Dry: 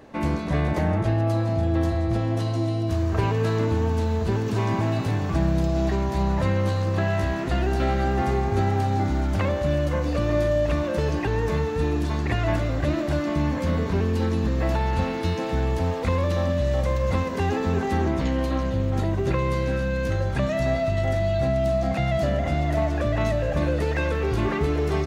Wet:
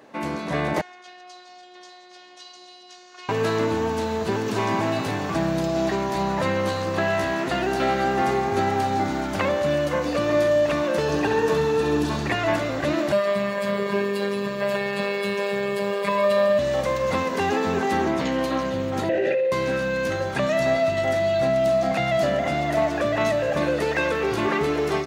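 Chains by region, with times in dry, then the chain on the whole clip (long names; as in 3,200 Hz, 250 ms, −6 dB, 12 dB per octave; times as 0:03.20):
0:00.81–0:03.29: low-pass filter 6,000 Hz 24 dB per octave + first difference + phases set to zero 361 Hz
0:11.02–0:12.29: notch filter 2,100 Hz, Q 5.9 + flutter between parallel walls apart 11.6 metres, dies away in 0.65 s
0:13.12–0:16.59: parametric band 6,000 Hz −14 dB 0.24 octaves + comb filter 1.8 ms, depth 97% + phases set to zero 200 Hz
0:19.09–0:19.52: formant filter e + flutter between parallel walls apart 10.2 metres, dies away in 1.1 s + envelope flattener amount 100%
whole clip: high-pass filter 160 Hz 12 dB per octave; low-shelf EQ 330 Hz −7 dB; automatic gain control gain up to 4.5 dB; level +1 dB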